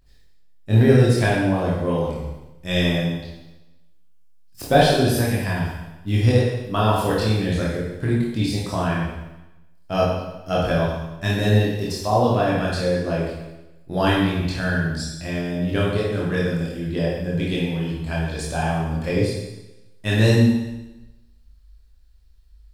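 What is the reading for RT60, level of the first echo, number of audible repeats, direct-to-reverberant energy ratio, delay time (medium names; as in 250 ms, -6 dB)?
1.0 s, no echo, no echo, -5.5 dB, no echo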